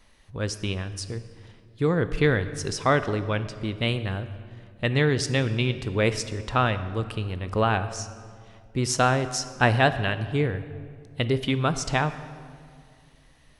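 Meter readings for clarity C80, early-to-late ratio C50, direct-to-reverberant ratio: 13.5 dB, 12.5 dB, 11.5 dB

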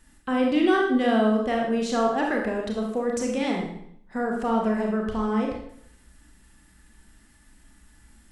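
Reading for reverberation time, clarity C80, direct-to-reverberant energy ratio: 0.65 s, 6.0 dB, -0.5 dB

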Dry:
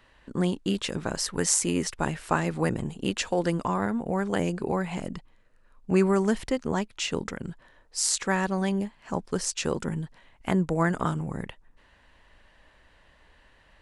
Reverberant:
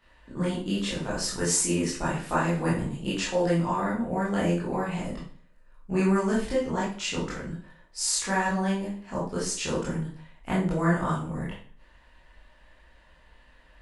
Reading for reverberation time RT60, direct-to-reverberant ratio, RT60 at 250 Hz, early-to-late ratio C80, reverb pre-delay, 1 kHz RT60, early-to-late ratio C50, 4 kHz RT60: 0.45 s, -8.5 dB, 0.45 s, 9.0 dB, 17 ms, 0.45 s, 4.0 dB, 0.40 s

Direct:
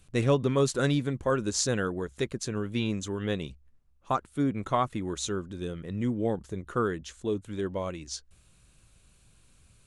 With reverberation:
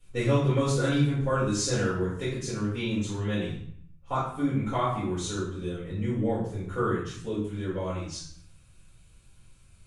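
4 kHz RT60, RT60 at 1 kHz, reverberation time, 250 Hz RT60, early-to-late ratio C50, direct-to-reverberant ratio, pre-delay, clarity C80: 0.55 s, 0.65 s, 0.65 s, 0.95 s, 2.5 dB, -11.0 dB, 3 ms, 6.5 dB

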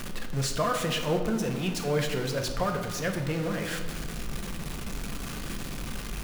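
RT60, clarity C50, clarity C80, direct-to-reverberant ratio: 1.5 s, 7.0 dB, 9.0 dB, 4.0 dB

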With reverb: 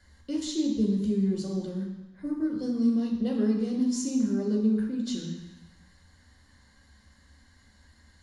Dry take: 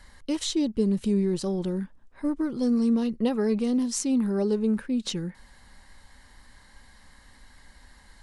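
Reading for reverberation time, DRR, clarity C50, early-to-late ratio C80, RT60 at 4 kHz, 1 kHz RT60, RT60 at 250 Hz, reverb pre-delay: 1.0 s, -1.0 dB, 4.0 dB, 6.0 dB, 1.1 s, 1.1 s, 1.0 s, 5 ms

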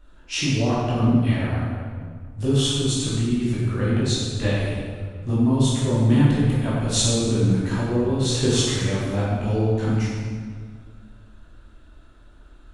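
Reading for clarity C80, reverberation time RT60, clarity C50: 0.0 dB, 1.8 s, -2.0 dB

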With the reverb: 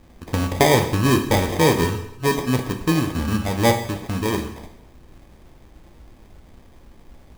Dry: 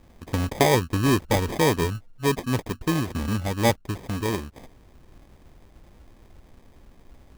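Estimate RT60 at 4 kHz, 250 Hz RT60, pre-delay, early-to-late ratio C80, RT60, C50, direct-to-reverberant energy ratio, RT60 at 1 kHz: 0.75 s, 0.85 s, 5 ms, 11.0 dB, 0.85 s, 9.0 dB, 5.0 dB, 0.85 s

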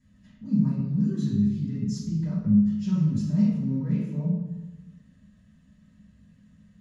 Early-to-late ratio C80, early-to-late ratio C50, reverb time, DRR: 3.5 dB, 0.5 dB, 1.1 s, -11.5 dB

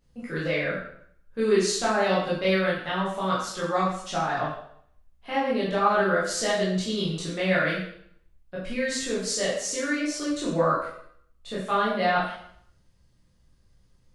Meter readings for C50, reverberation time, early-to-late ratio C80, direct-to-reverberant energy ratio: 2.0 dB, 0.65 s, 5.5 dB, -8.5 dB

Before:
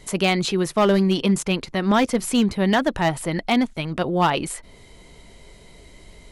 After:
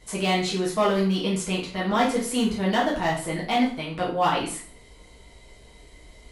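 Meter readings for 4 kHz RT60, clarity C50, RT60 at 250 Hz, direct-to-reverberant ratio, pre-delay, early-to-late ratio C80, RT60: 0.45 s, 6.0 dB, 0.50 s, -5.5 dB, 4 ms, 11.0 dB, 0.45 s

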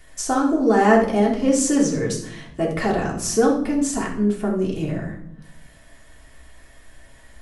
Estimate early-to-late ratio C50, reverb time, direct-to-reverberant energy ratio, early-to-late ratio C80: 6.0 dB, 0.75 s, -3.5 dB, 10.0 dB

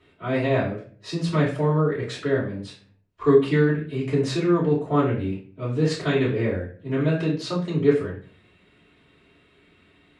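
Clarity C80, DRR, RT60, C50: 12.0 dB, -8.5 dB, 0.45 s, 6.5 dB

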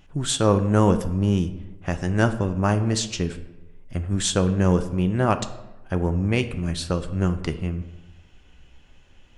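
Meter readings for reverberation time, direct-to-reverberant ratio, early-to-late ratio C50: 1.0 s, 9.0 dB, 13.0 dB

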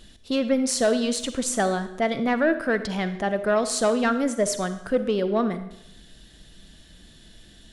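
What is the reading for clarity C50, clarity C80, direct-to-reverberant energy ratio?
11.5 dB, 13.5 dB, 10.5 dB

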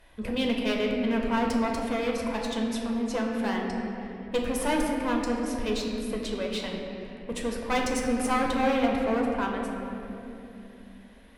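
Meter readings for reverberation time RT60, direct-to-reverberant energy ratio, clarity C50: 3.0 s, -0.5 dB, 2.0 dB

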